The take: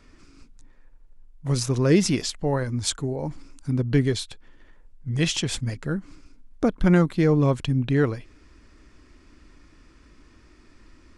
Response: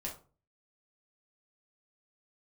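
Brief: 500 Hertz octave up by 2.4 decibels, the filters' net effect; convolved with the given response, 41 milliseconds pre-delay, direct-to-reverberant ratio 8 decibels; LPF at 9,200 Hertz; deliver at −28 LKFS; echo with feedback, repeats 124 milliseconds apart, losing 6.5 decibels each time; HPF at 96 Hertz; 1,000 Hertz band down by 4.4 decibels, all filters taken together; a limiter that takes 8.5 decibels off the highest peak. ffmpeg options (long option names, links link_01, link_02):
-filter_complex "[0:a]highpass=96,lowpass=9200,equalizer=frequency=500:width_type=o:gain=4.5,equalizer=frequency=1000:width_type=o:gain=-8,alimiter=limit=-15dB:level=0:latency=1,aecho=1:1:124|248|372|496|620|744:0.473|0.222|0.105|0.0491|0.0231|0.0109,asplit=2[link_01][link_02];[1:a]atrim=start_sample=2205,adelay=41[link_03];[link_02][link_03]afir=irnorm=-1:irlink=0,volume=-8dB[link_04];[link_01][link_04]amix=inputs=2:normalize=0,volume=-3.5dB"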